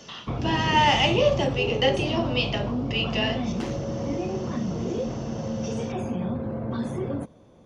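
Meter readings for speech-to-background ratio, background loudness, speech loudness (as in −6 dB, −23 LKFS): 5.5 dB, −29.5 LKFS, −24.0 LKFS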